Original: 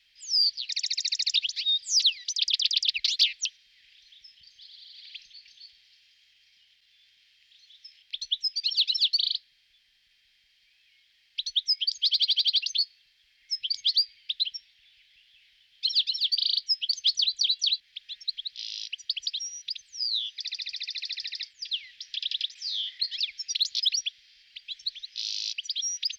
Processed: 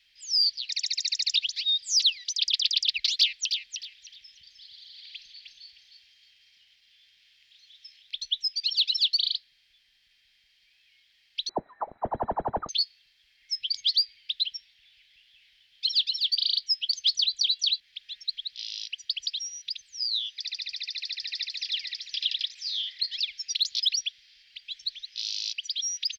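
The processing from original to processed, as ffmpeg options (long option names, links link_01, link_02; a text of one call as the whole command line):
ffmpeg -i in.wav -filter_complex "[0:a]asettb=1/sr,asplit=3[link_01][link_02][link_03];[link_01]atrim=end=3.204[link_04];[link_02]atrim=start=3.2:end=8.15,asetpts=PTS-STARTPTS,afade=type=in:duration=0.004:curve=qsin,afade=type=out:start_time=4.946:duration=0.004:curve=qsin,aecho=1:1:308|616|924:0.447|0.107|0.0257,atrim=end_sample=218295[link_05];[link_03]atrim=start=8.146[link_06];[link_04][link_05]acrossfade=duration=0.004:curve1=hsin:curve2=qsin[link_07];[link_07][link_06]acrossfade=duration=0.004:curve1=qsin:curve2=hsin,asettb=1/sr,asplit=3[link_08][link_09][link_10];[link_08]atrim=end=11.494[link_11];[link_09]atrim=start=11.49:end=12.69,asetpts=PTS-STARTPTS,afade=type=in:duration=0.004:curve=qsin,afade=type=out:start_time=1.196:duration=0.004:curve=qsin,lowpass=frequency=3400:width_type=q:width=0.5098,lowpass=frequency=3400:width_type=q:width=0.6013,lowpass=frequency=3400:width_type=q:width=0.9,lowpass=frequency=3400:width_type=q:width=2.563,afreqshift=-4000[link_12];[link_10]atrim=start=12.686[link_13];[link_11][link_12]acrossfade=duration=0.004:curve1=hsin:curve2=qsin[link_14];[link_14][link_13]acrossfade=duration=0.004:curve1=qsin:curve2=hsin,asplit=2[link_15][link_16];[link_16]afade=type=in:start_time=20.76:duration=0.01,afade=type=out:start_time=21.78:duration=0.01,aecho=0:1:520|1040|1560|2080|2600:0.891251|0.311938|0.109178|0.0382124|0.0133743[link_17];[link_15][link_17]amix=inputs=2:normalize=0" out.wav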